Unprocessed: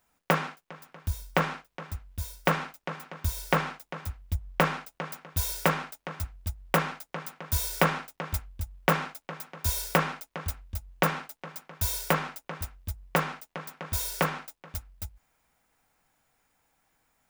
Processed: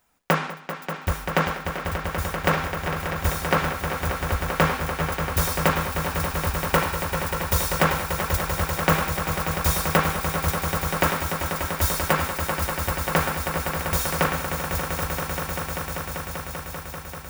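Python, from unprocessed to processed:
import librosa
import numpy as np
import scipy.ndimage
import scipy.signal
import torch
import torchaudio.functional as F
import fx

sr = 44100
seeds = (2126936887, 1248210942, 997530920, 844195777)

p1 = 10.0 ** (-16.5 / 20.0) * (np.abs((x / 10.0 ** (-16.5 / 20.0) + 3.0) % 4.0 - 2.0) - 1.0)
p2 = x + F.gain(torch.from_numpy(p1), -7.5).numpy()
p3 = fx.echo_swell(p2, sr, ms=195, loudest=5, wet_db=-9)
y = F.gain(torch.from_numpy(p3), 1.0).numpy()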